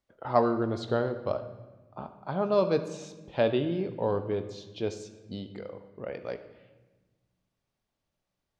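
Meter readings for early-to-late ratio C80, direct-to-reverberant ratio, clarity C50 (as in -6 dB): 13.0 dB, 8.0 dB, 11.0 dB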